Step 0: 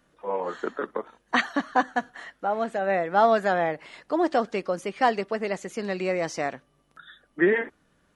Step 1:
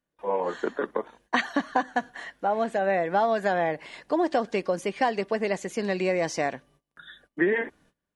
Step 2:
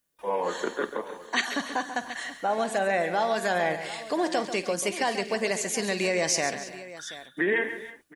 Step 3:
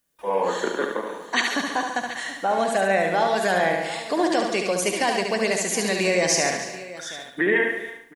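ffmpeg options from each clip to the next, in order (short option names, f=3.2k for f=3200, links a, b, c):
-af "agate=range=-22dB:threshold=-59dB:ratio=16:detection=peak,bandreject=f=1.3k:w=6.5,acompressor=threshold=-22dB:ratio=6,volume=2.5dB"
-filter_complex "[0:a]alimiter=limit=-16dB:level=0:latency=1:release=67,asplit=2[a][b];[b]aecho=0:1:50|138|288|324|730:0.158|0.282|0.112|0.106|0.158[c];[a][c]amix=inputs=2:normalize=0,crystalizer=i=5:c=0,volume=-2dB"
-af "aecho=1:1:72|144|216|288:0.562|0.202|0.0729|0.0262,volume=3.5dB"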